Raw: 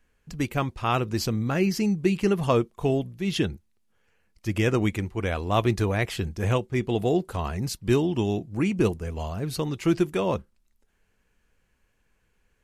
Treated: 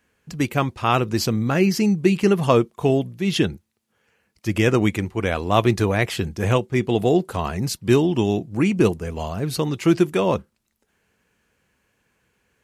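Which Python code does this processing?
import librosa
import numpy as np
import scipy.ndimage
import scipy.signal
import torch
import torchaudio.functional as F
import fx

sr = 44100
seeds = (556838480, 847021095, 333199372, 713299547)

y = scipy.signal.sosfilt(scipy.signal.butter(2, 98.0, 'highpass', fs=sr, output='sos'), x)
y = y * librosa.db_to_amplitude(5.5)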